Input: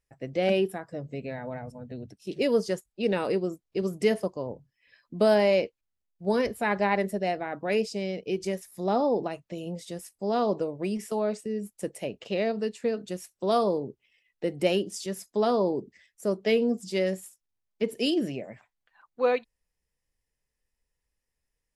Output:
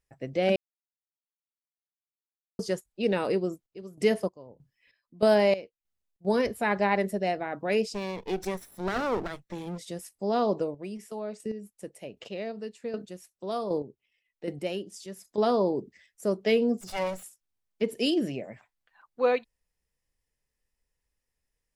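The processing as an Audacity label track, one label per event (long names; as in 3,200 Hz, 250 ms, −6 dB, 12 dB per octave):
0.560000	2.590000	silence
3.350000	6.250000	square-wave tremolo 1.6 Hz
7.940000	9.780000	lower of the sound and its delayed copy delay 0.53 ms
10.630000	15.380000	square-wave tremolo 1.3 Hz, depth 60%, duty 15%
16.810000	17.230000	lower of the sound and its delayed copy delay 1.4 ms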